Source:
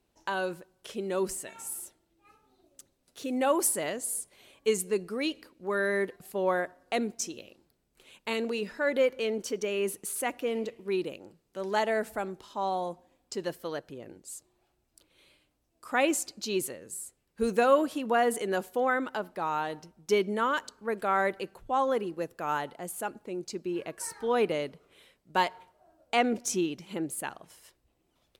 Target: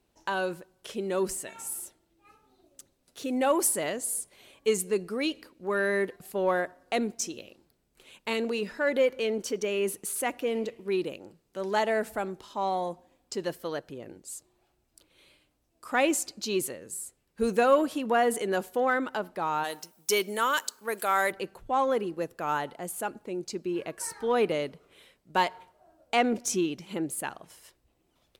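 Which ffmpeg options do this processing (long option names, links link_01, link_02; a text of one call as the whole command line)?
ffmpeg -i in.wav -filter_complex "[0:a]asplit=3[link_01][link_02][link_03];[link_01]afade=type=out:start_time=19.63:duration=0.02[link_04];[link_02]aemphasis=mode=production:type=riaa,afade=type=in:start_time=19.63:duration=0.02,afade=type=out:start_time=21.3:duration=0.02[link_05];[link_03]afade=type=in:start_time=21.3:duration=0.02[link_06];[link_04][link_05][link_06]amix=inputs=3:normalize=0,asplit=2[link_07][link_08];[link_08]asoftclip=type=tanh:threshold=-27dB,volume=-11.5dB[link_09];[link_07][link_09]amix=inputs=2:normalize=0" out.wav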